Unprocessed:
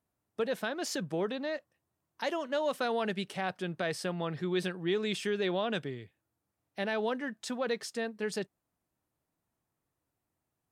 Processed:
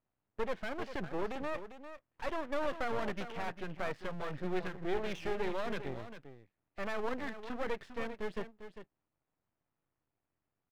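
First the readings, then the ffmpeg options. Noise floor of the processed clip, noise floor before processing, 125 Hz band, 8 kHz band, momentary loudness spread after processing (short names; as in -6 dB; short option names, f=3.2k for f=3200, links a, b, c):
under -85 dBFS, under -85 dBFS, -5.5 dB, -15.0 dB, 14 LU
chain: -af "lowpass=f=2.8k:w=0.5412,lowpass=f=2.8k:w=1.3066,aecho=1:1:399:0.282,aeval=exprs='max(val(0),0)':c=same,volume=1dB"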